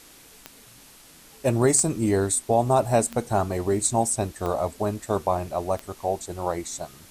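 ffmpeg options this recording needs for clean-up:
-af "adeclick=t=4,afftdn=nr=19:nf=-50"

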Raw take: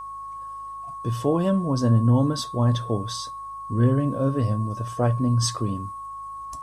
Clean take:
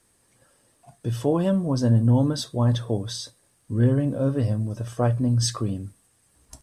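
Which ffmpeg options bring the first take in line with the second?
-af "bandreject=f=52.5:t=h:w=4,bandreject=f=105:t=h:w=4,bandreject=f=157.5:t=h:w=4,bandreject=f=1100:w=30"

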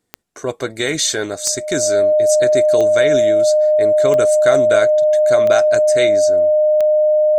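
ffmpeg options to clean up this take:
-af "adeclick=t=4,bandreject=f=610:w=30"

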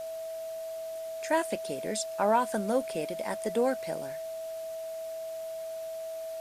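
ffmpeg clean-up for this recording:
-af "adeclick=t=4,bandreject=f=650:w=30,afwtdn=0.0025"

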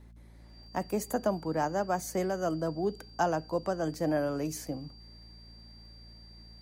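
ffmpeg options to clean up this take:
-af "adeclick=t=4,bandreject=f=56.7:t=h:w=4,bandreject=f=113.4:t=h:w=4,bandreject=f=170.1:t=h:w=4,bandreject=f=226.8:t=h:w=4,bandreject=f=4700:w=30"

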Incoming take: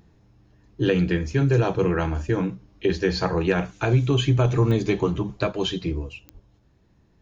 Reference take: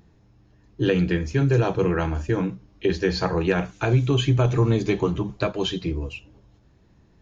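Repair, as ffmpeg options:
-filter_complex "[0:a]adeclick=t=4,asplit=3[s0][s1][s2];[s0]afade=t=out:st=6.33:d=0.02[s3];[s1]highpass=f=140:w=0.5412,highpass=f=140:w=1.3066,afade=t=in:st=6.33:d=0.02,afade=t=out:st=6.45:d=0.02[s4];[s2]afade=t=in:st=6.45:d=0.02[s5];[s3][s4][s5]amix=inputs=3:normalize=0,asetnsamples=n=441:p=0,asendcmd='6.02 volume volume 3.5dB',volume=1"

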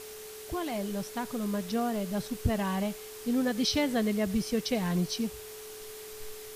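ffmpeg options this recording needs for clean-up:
-af "adeclick=t=4,bandreject=f=390.9:t=h:w=4,bandreject=f=781.8:t=h:w=4,bandreject=f=1172.7:t=h:w=4,bandreject=f=1563.6:t=h:w=4,bandreject=f=430:w=30,afftdn=nr=30:nf=-44"

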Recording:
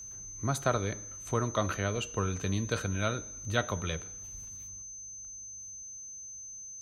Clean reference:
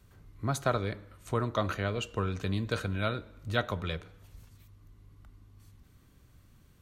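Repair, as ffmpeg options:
-af "bandreject=f=6200:w=30,asetnsamples=n=441:p=0,asendcmd='4.82 volume volume 9.5dB',volume=1"

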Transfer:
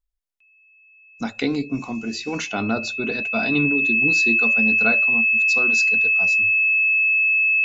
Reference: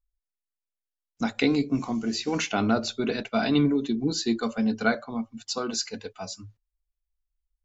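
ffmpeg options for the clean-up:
-af "bandreject=f=2600:w=30"

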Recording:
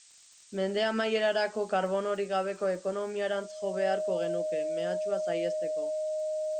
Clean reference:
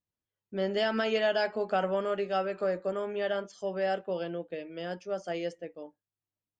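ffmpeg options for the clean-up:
-af "adeclick=t=4,bandreject=f=620:w=30,afftdn=nr=30:nf=-45"

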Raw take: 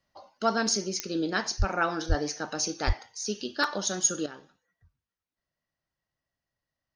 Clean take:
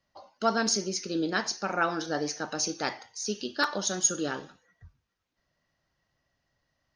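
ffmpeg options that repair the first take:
-filter_complex "[0:a]adeclick=t=4,asplit=3[s0][s1][s2];[s0]afade=t=out:st=1.58:d=0.02[s3];[s1]highpass=f=140:w=0.5412,highpass=f=140:w=1.3066,afade=t=in:st=1.58:d=0.02,afade=t=out:st=1.7:d=0.02[s4];[s2]afade=t=in:st=1.7:d=0.02[s5];[s3][s4][s5]amix=inputs=3:normalize=0,asplit=3[s6][s7][s8];[s6]afade=t=out:st=2.08:d=0.02[s9];[s7]highpass=f=140:w=0.5412,highpass=f=140:w=1.3066,afade=t=in:st=2.08:d=0.02,afade=t=out:st=2.2:d=0.02[s10];[s8]afade=t=in:st=2.2:d=0.02[s11];[s9][s10][s11]amix=inputs=3:normalize=0,asplit=3[s12][s13][s14];[s12]afade=t=out:st=2.86:d=0.02[s15];[s13]highpass=f=140:w=0.5412,highpass=f=140:w=1.3066,afade=t=in:st=2.86:d=0.02,afade=t=out:st=2.98:d=0.02[s16];[s14]afade=t=in:st=2.98:d=0.02[s17];[s15][s16][s17]amix=inputs=3:normalize=0,asetnsamples=n=441:p=0,asendcmd='4.26 volume volume 11dB',volume=1"

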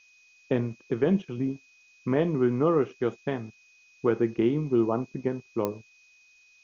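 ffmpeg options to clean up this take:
-af "adeclick=t=4,bandreject=f=2500:w=30,afftdn=nr=12:nf=-59"

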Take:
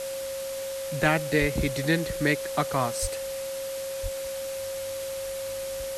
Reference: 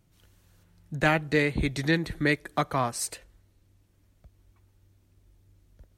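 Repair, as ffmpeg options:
-filter_complex "[0:a]bandreject=f=540:w=30,asplit=3[s0][s1][s2];[s0]afade=t=out:st=1.4:d=0.02[s3];[s1]highpass=f=140:w=0.5412,highpass=f=140:w=1.3066,afade=t=in:st=1.4:d=0.02,afade=t=out:st=1.52:d=0.02[s4];[s2]afade=t=in:st=1.52:d=0.02[s5];[s3][s4][s5]amix=inputs=3:normalize=0,asplit=3[s6][s7][s8];[s6]afade=t=out:st=3.01:d=0.02[s9];[s7]highpass=f=140:w=0.5412,highpass=f=140:w=1.3066,afade=t=in:st=3.01:d=0.02,afade=t=out:st=3.13:d=0.02[s10];[s8]afade=t=in:st=3.13:d=0.02[s11];[s9][s10][s11]amix=inputs=3:normalize=0,asplit=3[s12][s13][s14];[s12]afade=t=out:st=4.02:d=0.02[s15];[s13]highpass=f=140:w=0.5412,highpass=f=140:w=1.3066,afade=t=in:st=4.02:d=0.02,afade=t=out:st=4.14:d=0.02[s16];[s14]afade=t=in:st=4.14:d=0.02[s17];[s15][s16][s17]amix=inputs=3:normalize=0,afwtdn=0.011,asetnsamples=n=441:p=0,asendcmd='4.57 volume volume -6.5dB',volume=1"

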